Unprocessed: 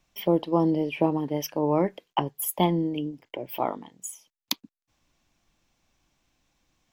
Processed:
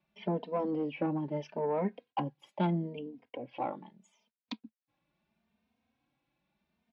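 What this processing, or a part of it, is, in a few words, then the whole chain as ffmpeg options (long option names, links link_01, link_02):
barber-pole flanger into a guitar amplifier: -filter_complex "[0:a]asplit=2[link_01][link_02];[link_02]adelay=3,afreqshift=0.77[link_03];[link_01][link_03]amix=inputs=2:normalize=1,asoftclip=type=tanh:threshold=-20dB,highpass=97,equalizer=frequency=110:width_type=q:width=4:gain=-7,equalizer=frequency=220:width_type=q:width=4:gain=8,equalizer=frequency=330:width_type=q:width=4:gain=-4,equalizer=frequency=1200:width_type=q:width=4:gain=-5,equalizer=frequency=1900:width_type=q:width=4:gain=-4,equalizer=frequency=3100:width_type=q:width=4:gain=-6,lowpass=frequency=3500:width=0.5412,lowpass=frequency=3500:width=1.3066,volume=-2dB"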